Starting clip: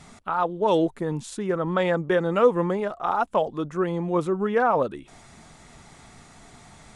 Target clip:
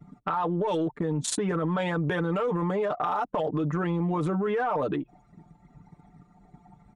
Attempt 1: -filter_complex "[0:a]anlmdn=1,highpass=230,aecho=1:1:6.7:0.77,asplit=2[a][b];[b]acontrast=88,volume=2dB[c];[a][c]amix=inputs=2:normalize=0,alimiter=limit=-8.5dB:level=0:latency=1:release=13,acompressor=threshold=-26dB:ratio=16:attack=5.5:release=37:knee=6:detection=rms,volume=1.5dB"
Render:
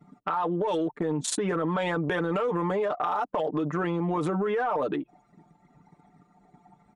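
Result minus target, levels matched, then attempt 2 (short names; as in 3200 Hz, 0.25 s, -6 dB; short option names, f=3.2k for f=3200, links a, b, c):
125 Hz band -3.5 dB
-filter_complex "[0:a]anlmdn=1,highpass=100,aecho=1:1:6.7:0.77,asplit=2[a][b];[b]acontrast=88,volume=2dB[c];[a][c]amix=inputs=2:normalize=0,alimiter=limit=-8.5dB:level=0:latency=1:release=13,acompressor=threshold=-26dB:ratio=16:attack=5.5:release=37:knee=6:detection=rms,volume=1.5dB"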